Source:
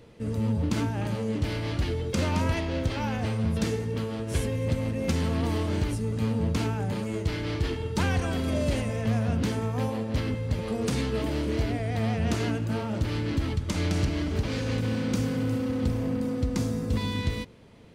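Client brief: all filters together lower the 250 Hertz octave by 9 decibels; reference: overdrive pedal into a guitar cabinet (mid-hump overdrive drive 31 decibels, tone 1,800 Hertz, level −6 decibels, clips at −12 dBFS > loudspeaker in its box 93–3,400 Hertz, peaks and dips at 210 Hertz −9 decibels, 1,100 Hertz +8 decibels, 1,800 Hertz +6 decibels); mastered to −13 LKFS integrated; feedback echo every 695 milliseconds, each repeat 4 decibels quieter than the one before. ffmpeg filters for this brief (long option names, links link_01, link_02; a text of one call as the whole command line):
ffmpeg -i in.wav -filter_complex "[0:a]equalizer=frequency=250:width_type=o:gain=-7,aecho=1:1:695|1390|2085|2780|3475|4170|4865|5560|6255:0.631|0.398|0.25|0.158|0.0994|0.0626|0.0394|0.0249|0.0157,asplit=2[link_01][link_02];[link_02]highpass=frequency=720:poles=1,volume=31dB,asoftclip=type=tanh:threshold=-12dB[link_03];[link_01][link_03]amix=inputs=2:normalize=0,lowpass=frequency=1800:poles=1,volume=-6dB,highpass=93,equalizer=frequency=210:width_type=q:width=4:gain=-9,equalizer=frequency=1100:width_type=q:width=4:gain=8,equalizer=frequency=1800:width_type=q:width=4:gain=6,lowpass=frequency=3400:width=0.5412,lowpass=frequency=3400:width=1.3066,volume=6.5dB" out.wav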